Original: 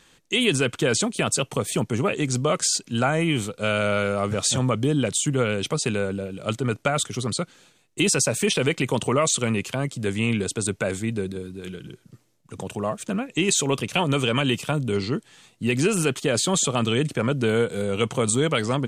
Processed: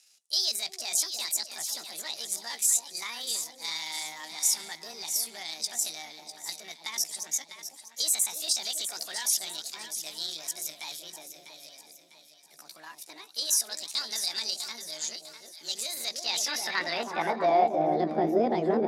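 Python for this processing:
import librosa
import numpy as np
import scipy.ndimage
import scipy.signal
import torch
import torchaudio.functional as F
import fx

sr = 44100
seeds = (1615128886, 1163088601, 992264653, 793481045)

p1 = fx.pitch_heads(x, sr, semitones=7.5)
p2 = fx.high_shelf(p1, sr, hz=12000.0, db=-9.0)
p3 = fx.echo_alternate(p2, sr, ms=325, hz=890.0, feedback_pct=65, wet_db=-6.0)
p4 = 10.0 ** (-22.5 / 20.0) * np.tanh(p3 / 10.0 ** (-22.5 / 20.0))
p5 = p3 + (p4 * 10.0 ** (-5.5 / 20.0))
p6 = fx.dynamic_eq(p5, sr, hz=6300.0, q=0.75, threshold_db=-35.0, ratio=4.0, max_db=4)
y = fx.filter_sweep_bandpass(p6, sr, from_hz=7600.0, to_hz=390.0, start_s=15.94, end_s=18.03, q=1.5)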